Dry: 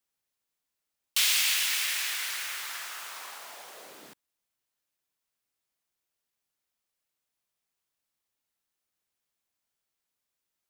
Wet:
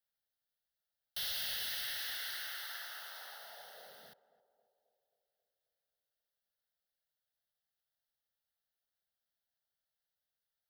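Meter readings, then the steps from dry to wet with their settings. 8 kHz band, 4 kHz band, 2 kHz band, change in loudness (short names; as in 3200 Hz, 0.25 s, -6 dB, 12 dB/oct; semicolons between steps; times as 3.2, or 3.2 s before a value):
-18.0 dB, -10.5 dB, -12.0 dB, -12.5 dB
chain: overloaded stage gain 30 dB; fixed phaser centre 1600 Hz, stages 8; narrowing echo 0.268 s, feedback 63%, band-pass 500 Hz, level -15 dB; gain -4 dB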